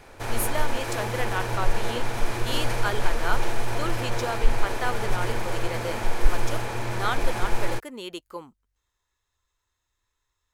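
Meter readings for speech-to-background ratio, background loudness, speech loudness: -2.5 dB, -30.5 LUFS, -33.0 LUFS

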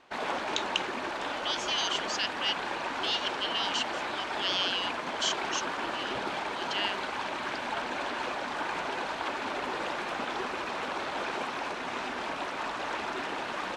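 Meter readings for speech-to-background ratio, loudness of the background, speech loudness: 1.0 dB, -33.5 LUFS, -32.5 LUFS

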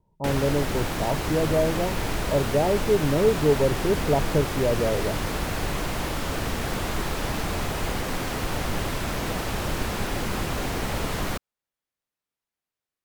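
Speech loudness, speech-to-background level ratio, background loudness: -25.0 LUFS, 3.5 dB, -28.5 LUFS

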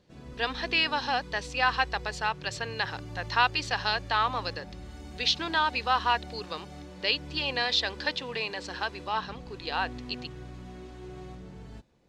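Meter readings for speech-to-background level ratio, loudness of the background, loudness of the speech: 15.0 dB, -44.0 LUFS, -29.0 LUFS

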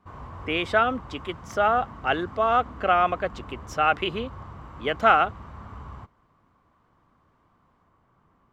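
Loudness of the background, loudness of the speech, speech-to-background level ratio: -42.0 LUFS, -24.0 LUFS, 18.0 dB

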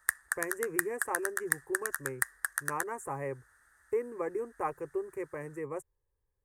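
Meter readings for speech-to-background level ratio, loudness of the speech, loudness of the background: -3.5 dB, -38.0 LUFS, -34.5 LUFS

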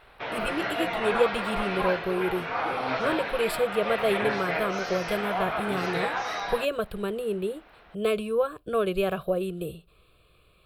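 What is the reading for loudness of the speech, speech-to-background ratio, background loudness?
-29.5 LUFS, 0.5 dB, -30.0 LUFS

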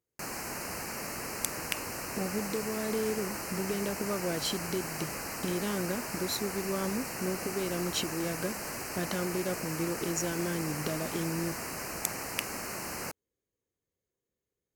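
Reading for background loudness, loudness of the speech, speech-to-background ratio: -36.5 LUFS, -35.5 LUFS, 1.0 dB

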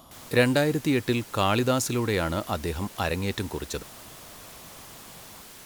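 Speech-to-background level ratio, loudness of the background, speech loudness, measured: 17.5 dB, -44.0 LUFS, -26.5 LUFS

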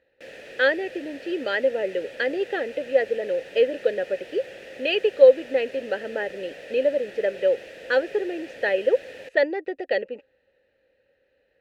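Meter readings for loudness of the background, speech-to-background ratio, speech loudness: -41.0 LUFS, 17.0 dB, -24.0 LUFS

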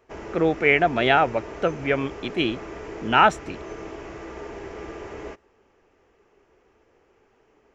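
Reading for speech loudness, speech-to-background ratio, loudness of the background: -21.5 LUFS, 16.0 dB, -37.5 LUFS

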